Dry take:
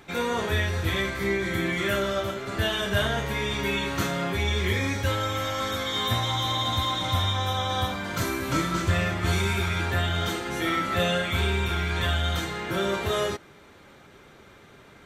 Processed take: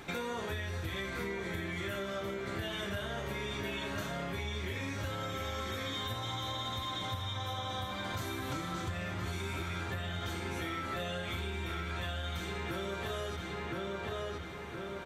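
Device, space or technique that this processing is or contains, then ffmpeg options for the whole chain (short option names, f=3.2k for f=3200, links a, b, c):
serial compression, peaks first: -filter_complex "[0:a]asplit=2[a][b];[b]adelay=1018,lowpass=f=3.7k:p=1,volume=-6dB,asplit=2[c][d];[d]adelay=1018,lowpass=f=3.7k:p=1,volume=0.33,asplit=2[e][f];[f]adelay=1018,lowpass=f=3.7k:p=1,volume=0.33,asplit=2[g][h];[h]adelay=1018,lowpass=f=3.7k:p=1,volume=0.33[i];[a][c][e][g][i]amix=inputs=5:normalize=0,acompressor=threshold=-34dB:ratio=6,acompressor=threshold=-43dB:ratio=1.5,volume=2.5dB"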